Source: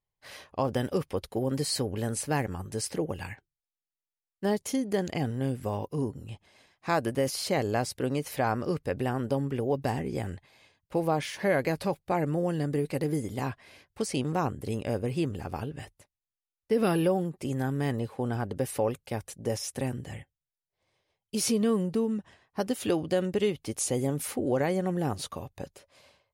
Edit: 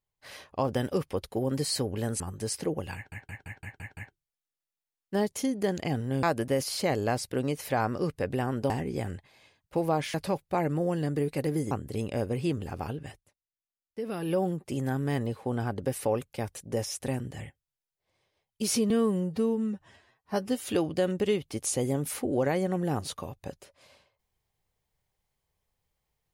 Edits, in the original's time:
2.2–2.52 cut
3.27 stutter 0.17 s, 7 plays
5.53–6.9 cut
9.37–9.89 cut
11.33–11.71 cut
13.28–14.44 cut
15.74–17.17 dip -9.5 dB, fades 0.25 s
21.63–22.81 stretch 1.5×

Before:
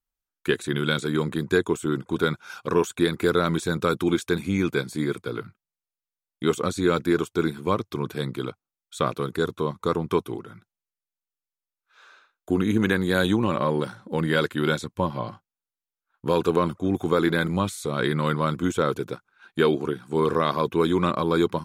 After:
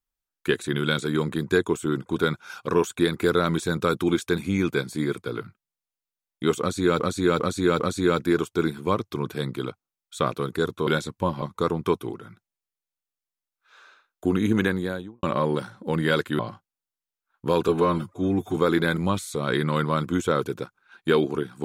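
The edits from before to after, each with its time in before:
6.6–7 loop, 4 plays
12.81–13.48 studio fade out
14.64–15.19 move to 9.67
16.48–17.07 stretch 1.5×

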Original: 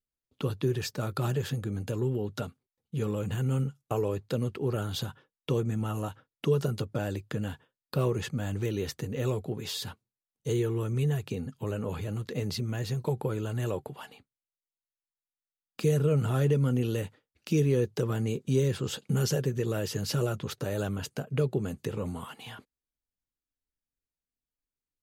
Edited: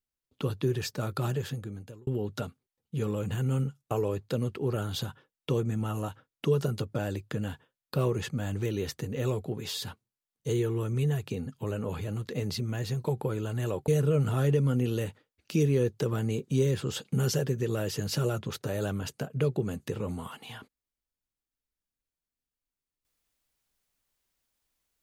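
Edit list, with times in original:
0.97–2.07 fade out equal-power
13.88–15.85 cut

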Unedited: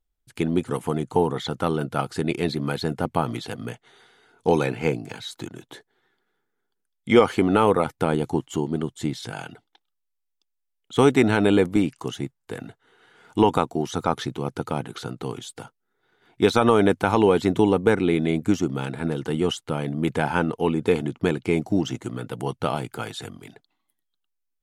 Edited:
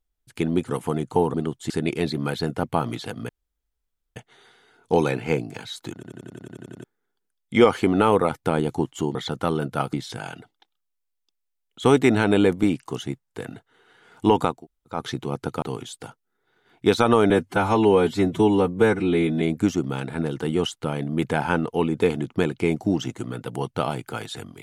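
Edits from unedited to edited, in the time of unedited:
1.34–2.12 swap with 8.7–9.06
3.71 insert room tone 0.87 s
5.49 stutter in place 0.09 s, 10 plays
13.68–14.1 room tone, crossfade 0.24 s
14.75–15.18 cut
16.86–18.27 stretch 1.5×

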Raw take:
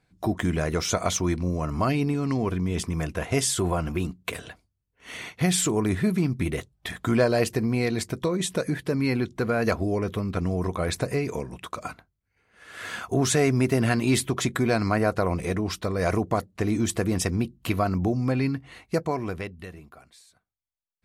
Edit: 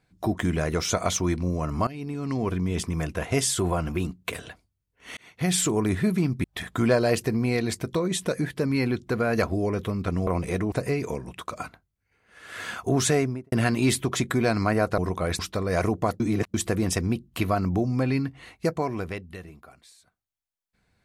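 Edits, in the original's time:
1.87–2.5 fade in, from -19 dB
5.17–5.55 fade in
6.44–6.73 cut
10.56–10.97 swap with 15.23–15.68
13.33–13.77 studio fade out
16.49–16.83 reverse

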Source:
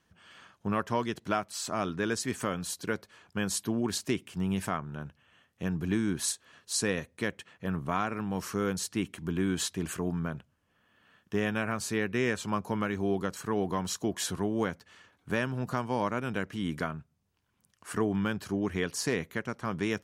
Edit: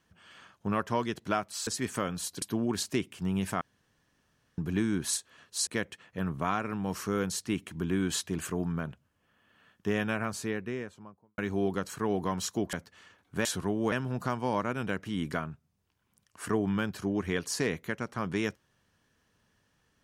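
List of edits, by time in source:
1.67–2.13 cut
2.88–3.57 cut
4.76–5.73 room tone
6.82–7.14 cut
11.54–12.85 studio fade out
14.2–14.67 move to 15.39

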